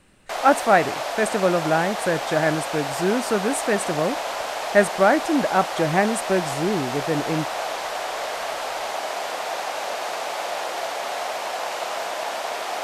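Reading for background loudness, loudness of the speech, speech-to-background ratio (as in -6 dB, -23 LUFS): -27.5 LUFS, -22.5 LUFS, 5.0 dB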